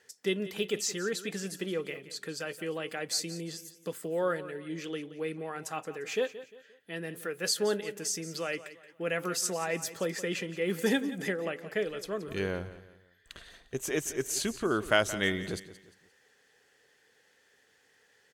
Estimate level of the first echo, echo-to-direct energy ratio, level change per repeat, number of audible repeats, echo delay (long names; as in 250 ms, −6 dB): −15.0 dB, −14.5 dB, −8.5 dB, 3, 175 ms